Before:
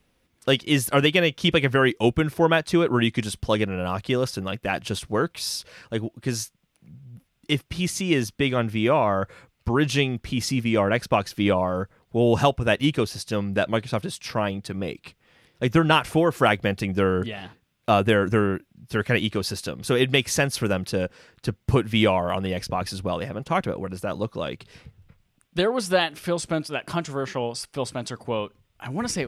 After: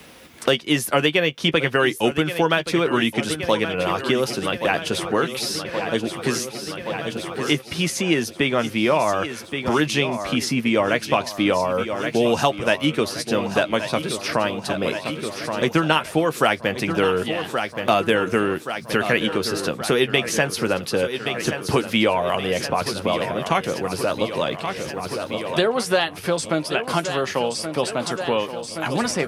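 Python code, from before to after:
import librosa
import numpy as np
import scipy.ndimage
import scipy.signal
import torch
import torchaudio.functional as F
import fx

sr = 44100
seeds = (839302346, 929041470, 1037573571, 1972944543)

y = fx.highpass(x, sr, hz=280.0, slope=6)
y = fx.doubler(y, sr, ms=13.0, db=-11.0)
y = fx.echo_feedback(y, sr, ms=1124, feedback_pct=59, wet_db=-13)
y = fx.band_squash(y, sr, depth_pct=70)
y = y * 10.0 ** (3.0 / 20.0)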